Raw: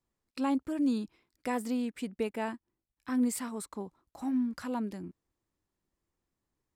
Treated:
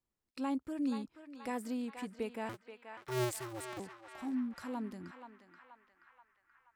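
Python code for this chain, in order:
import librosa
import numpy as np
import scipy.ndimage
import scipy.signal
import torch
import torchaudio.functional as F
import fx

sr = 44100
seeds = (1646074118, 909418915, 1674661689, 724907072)

y = fx.cycle_switch(x, sr, every=2, mode='inverted', at=(2.49, 3.8))
y = fx.echo_banded(y, sr, ms=479, feedback_pct=66, hz=1600.0, wet_db=-5.5)
y = y * 10.0 ** (-6.0 / 20.0)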